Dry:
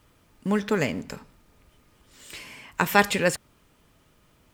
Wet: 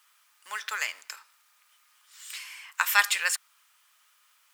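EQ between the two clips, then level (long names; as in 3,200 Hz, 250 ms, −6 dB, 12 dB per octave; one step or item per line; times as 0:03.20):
four-pole ladder high-pass 980 Hz, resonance 35%
high-shelf EQ 2,700 Hz +11 dB
+1.5 dB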